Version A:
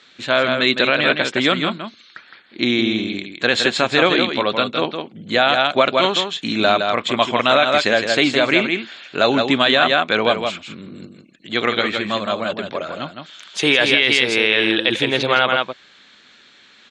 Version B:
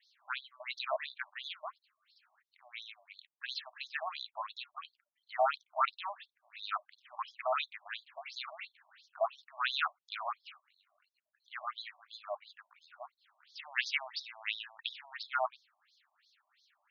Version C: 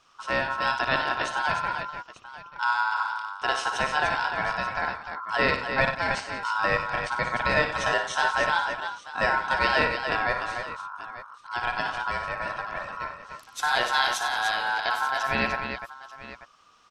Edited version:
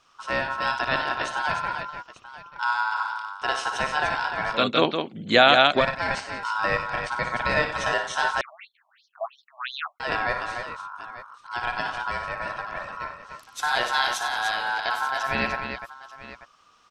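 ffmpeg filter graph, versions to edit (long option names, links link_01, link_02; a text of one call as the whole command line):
ffmpeg -i take0.wav -i take1.wav -i take2.wav -filter_complex "[2:a]asplit=3[link_01][link_02][link_03];[link_01]atrim=end=4.66[link_04];[0:a]atrim=start=4.5:end=5.88[link_05];[link_02]atrim=start=5.72:end=8.412[link_06];[1:a]atrim=start=8.408:end=10.002[link_07];[link_03]atrim=start=9.998[link_08];[link_04][link_05]acrossfade=duration=0.16:curve1=tri:curve2=tri[link_09];[link_09][link_06]acrossfade=duration=0.16:curve1=tri:curve2=tri[link_10];[link_10][link_07]acrossfade=duration=0.004:curve1=hsin:curve2=hsin[link_11];[link_11][link_08]acrossfade=duration=0.004:curve1=hsin:curve2=hsin" out.wav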